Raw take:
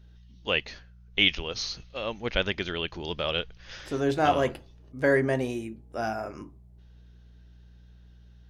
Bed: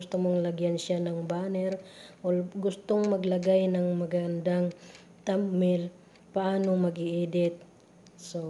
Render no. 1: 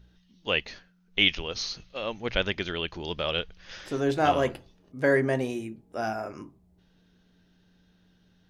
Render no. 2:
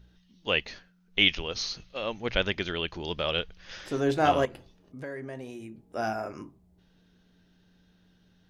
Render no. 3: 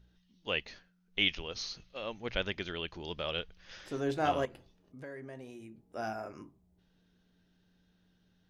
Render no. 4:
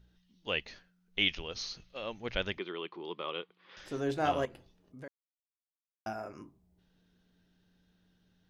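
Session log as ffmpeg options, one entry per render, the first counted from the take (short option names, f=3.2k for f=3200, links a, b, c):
-af "bandreject=f=60:t=h:w=4,bandreject=f=120:t=h:w=4"
-filter_complex "[0:a]asettb=1/sr,asplit=3[a][b][c];[a]atrim=end=4.454[d];[b]atrim=start=4.45:end=5.84,asetpts=PTS-STARTPTS,afade=t=in:d=0.004:c=qsin,afade=t=out:st=1.386:d=0.004:c=qsin,acompressor=threshold=-40dB:ratio=3:attack=3.2:release=140:knee=1:detection=peak[e];[c]atrim=start=5.836[f];[d][e]acrossfade=d=0.004:c1=hsin:c2=qsin[g];[g][f]acrossfade=d=0.004:c1=qsin:c2=hsin"
-af "volume=-7dB"
-filter_complex "[0:a]asettb=1/sr,asplit=3[a][b][c];[a]atrim=end=2.584[d];[b]atrim=start=2.58:end=3.77,asetpts=PTS-STARTPTS,afade=t=in:d=0.004:c=qsin,afade=t=out:st=1.186:d=0.004:c=qsin,highpass=f=200:w=0.5412,highpass=f=200:w=1.3066,equalizer=f=240:t=q:w=4:g=-6,equalizer=f=370:t=q:w=4:g=5,equalizer=f=630:t=q:w=4:g=-8,equalizer=f=1.1k:t=q:w=4:g=8,equalizer=f=1.6k:t=q:w=4:g=-8,equalizer=f=2.8k:t=q:w=4:g=-5,lowpass=f=3.4k:w=0.5412,lowpass=f=3.4k:w=1.3066[e];[c]atrim=start=3.766[f];[d][e]acrossfade=d=0.004:c1=hsin:c2=qsin[g];[g][f]acrossfade=d=0.004:c1=qsin:c2=hsin,asplit=3[h][i][j];[h]atrim=end=5.08,asetpts=PTS-STARTPTS,afade=t=out:st=5.076:d=0.004:c=hsin[k];[i]atrim=start=5.08:end=6.06,asetpts=PTS-STARTPTS,volume=0[l];[j]atrim=start=6.06,asetpts=PTS-STARTPTS,afade=t=in:d=0.004:c=hsin[m];[k][l][m]concat=n=3:v=0:a=1"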